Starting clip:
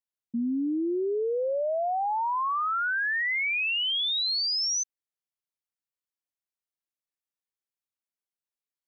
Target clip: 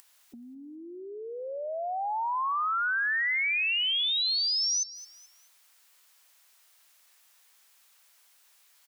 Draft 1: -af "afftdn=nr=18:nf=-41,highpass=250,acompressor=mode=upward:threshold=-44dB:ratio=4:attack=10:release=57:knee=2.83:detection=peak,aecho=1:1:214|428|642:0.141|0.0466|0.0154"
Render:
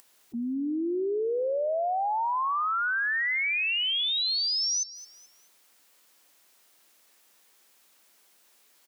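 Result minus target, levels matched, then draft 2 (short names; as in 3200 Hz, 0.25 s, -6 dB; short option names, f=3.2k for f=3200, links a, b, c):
250 Hz band +15.0 dB
-af "afftdn=nr=18:nf=-41,highpass=850,acompressor=mode=upward:threshold=-44dB:ratio=4:attack=10:release=57:knee=2.83:detection=peak,aecho=1:1:214|428|642:0.141|0.0466|0.0154"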